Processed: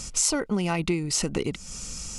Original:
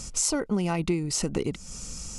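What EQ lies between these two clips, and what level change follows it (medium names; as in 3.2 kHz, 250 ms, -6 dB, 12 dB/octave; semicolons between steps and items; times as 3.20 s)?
tone controls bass 0 dB, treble -8 dB; treble shelf 2.1 kHz +10.5 dB; 0.0 dB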